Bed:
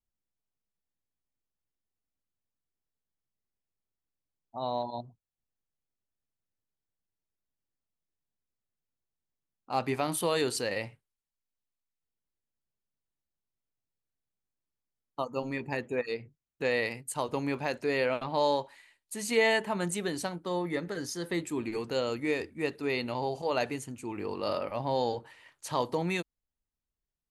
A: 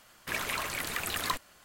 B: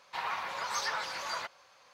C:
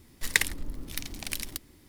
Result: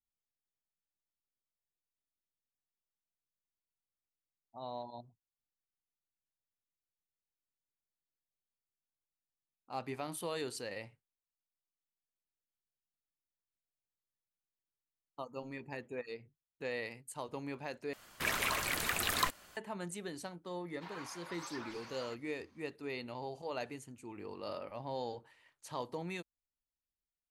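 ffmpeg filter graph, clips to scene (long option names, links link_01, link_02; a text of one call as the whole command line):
ffmpeg -i bed.wav -i cue0.wav -i cue1.wav -filter_complex "[0:a]volume=-10.5dB,asplit=2[link_01][link_02];[link_01]atrim=end=17.934[link_03];[1:a]atrim=end=1.64,asetpts=PTS-STARTPTS,volume=-0.5dB[link_04];[link_02]atrim=start=19.566[link_05];[2:a]atrim=end=1.93,asetpts=PTS-STARTPTS,volume=-14dB,afade=type=in:duration=0.004:curve=hsin,afade=type=out:start_time=1.926:duration=0.004:curve=hsin,adelay=911988S[link_06];[link_03][link_04]acrossfade=duration=0.004:curve1=hsin:curve2=hsin[link_07];[link_07][link_05]acrossfade=duration=0.004:curve1=hsin:curve2=hsin[link_08];[link_08][link_06]amix=inputs=2:normalize=0" out.wav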